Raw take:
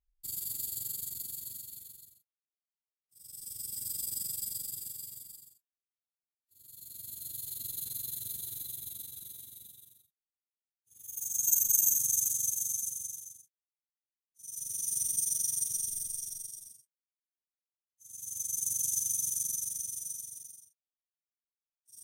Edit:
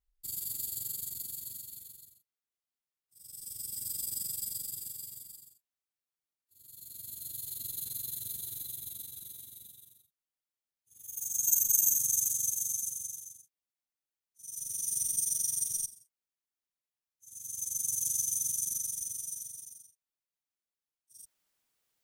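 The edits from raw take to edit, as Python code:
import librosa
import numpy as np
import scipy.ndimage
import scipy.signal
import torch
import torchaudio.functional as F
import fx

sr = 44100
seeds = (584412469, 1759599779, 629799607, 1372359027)

y = fx.edit(x, sr, fx.cut(start_s=15.86, length_s=0.78), tone=tone)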